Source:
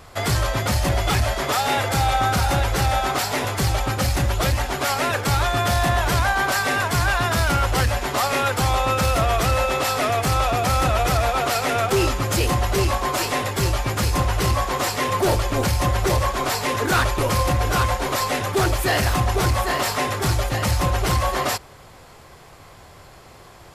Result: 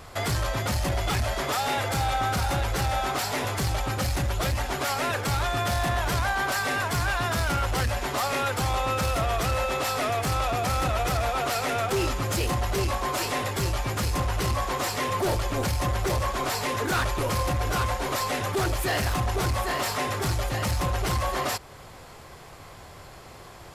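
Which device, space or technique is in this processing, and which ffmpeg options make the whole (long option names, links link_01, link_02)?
soft clipper into limiter: -af "asoftclip=type=tanh:threshold=-14.5dB,alimiter=limit=-20.5dB:level=0:latency=1:release=245"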